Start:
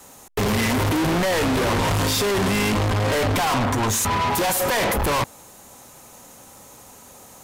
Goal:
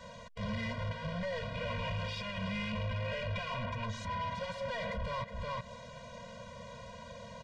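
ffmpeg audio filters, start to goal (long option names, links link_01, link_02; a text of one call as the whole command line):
ffmpeg -i in.wav -filter_complex "[0:a]lowpass=frequency=4400:width=0.5412,lowpass=frequency=4400:width=1.3066,aecho=1:1:368:0.168,acompressor=threshold=-33dB:ratio=12,asoftclip=type=tanh:threshold=-26dB,alimiter=level_in=11.5dB:limit=-24dB:level=0:latency=1:release=125,volume=-11.5dB,asettb=1/sr,asplit=3[link_01][link_02][link_03];[link_01]atrim=end=1.544[link_04];[link_02]atrim=start=1.54:end=3.84,asetpts=PTS-STARTPTS,afade=type=in:duration=0.004:curve=qsin,afade=type=out:start_time=2.296:duration=0.004:curve=qsin,equalizer=frequency=2600:width=6:gain=12.5[link_05];[link_03]atrim=start=3.836[link_06];[link_04][link_05]acrossfade=duration=0.004:curve1=hsin:curve2=qsin[link_07];[link_07][link_06]acrossfade=duration=0.004:curve1=qsin:curve2=hsin,afftfilt=real='re*eq(mod(floor(b*sr/1024/230),2),0)':imag='im*eq(mod(floor(b*sr/1024/230),2),0)':win_size=1024:overlap=0.75,volume=3.5dB" out.wav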